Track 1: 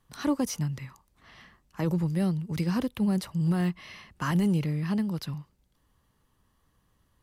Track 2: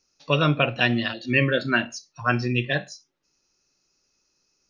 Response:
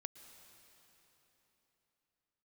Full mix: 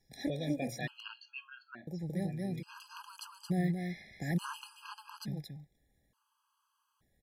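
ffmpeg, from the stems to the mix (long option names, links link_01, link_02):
-filter_complex "[0:a]lowshelf=frequency=200:gain=-5,volume=-2.5dB,asplit=3[link_01][link_02][link_03];[link_01]atrim=end=0.81,asetpts=PTS-STARTPTS,afade=type=out:start_time=0.806:duration=0.004:curve=hsin[link_04];[link_02]atrim=start=0.81:end=1.87,asetpts=PTS-STARTPTS,volume=0[link_05];[link_03]atrim=start=1.87,asetpts=PTS-STARTPTS,afade=type=in:duration=0.004:curve=hsin[link_06];[link_04][link_05][link_06]concat=n=3:v=0:a=1,asplit=2[link_07][link_08];[link_08]volume=-6.5dB[link_09];[1:a]acompressor=threshold=-34dB:ratio=2.5,lowpass=5500,volume=-5dB,afade=type=out:start_time=1.03:duration=0.62:silence=0.334965,asplit=2[link_10][link_11];[link_11]apad=whole_len=318573[link_12];[link_07][link_12]sidechaincompress=threshold=-51dB:ratio=8:attack=8.5:release=672[link_13];[link_09]aecho=0:1:224:1[link_14];[link_13][link_10][link_14]amix=inputs=3:normalize=0,afftfilt=real='re*gt(sin(2*PI*0.57*pts/sr)*(1-2*mod(floor(b*sr/1024/830),2)),0)':imag='im*gt(sin(2*PI*0.57*pts/sr)*(1-2*mod(floor(b*sr/1024/830),2)),0)':win_size=1024:overlap=0.75"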